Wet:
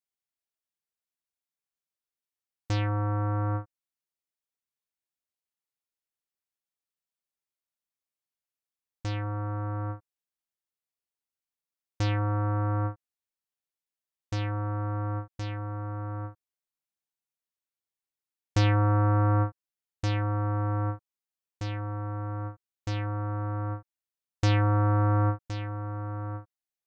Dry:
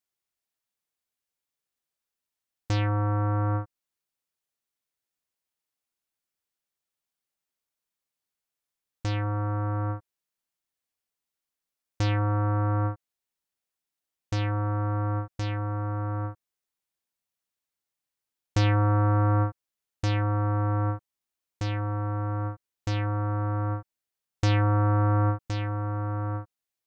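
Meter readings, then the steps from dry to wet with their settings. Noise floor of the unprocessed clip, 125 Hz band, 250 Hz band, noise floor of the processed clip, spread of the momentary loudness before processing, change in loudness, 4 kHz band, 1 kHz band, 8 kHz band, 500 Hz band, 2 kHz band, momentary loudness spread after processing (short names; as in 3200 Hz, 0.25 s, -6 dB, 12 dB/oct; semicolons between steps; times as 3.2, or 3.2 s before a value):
under -85 dBFS, -2.0 dB, -2.0 dB, under -85 dBFS, 11 LU, -2.0 dB, -1.5 dB, -2.0 dB, n/a, -2.0 dB, -2.0 dB, 13 LU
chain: upward expander 1.5:1, over -36 dBFS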